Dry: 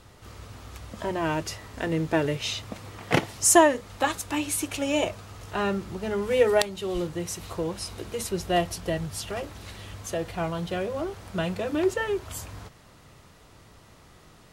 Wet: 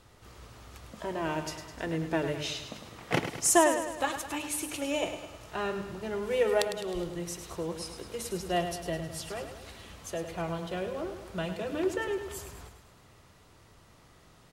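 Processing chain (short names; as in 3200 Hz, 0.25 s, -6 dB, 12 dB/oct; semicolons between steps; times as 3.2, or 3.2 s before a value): notches 50/100/150/200/250/300 Hz; feedback echo 0.104 s, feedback 54%, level -9 dB; gain -5.5 dB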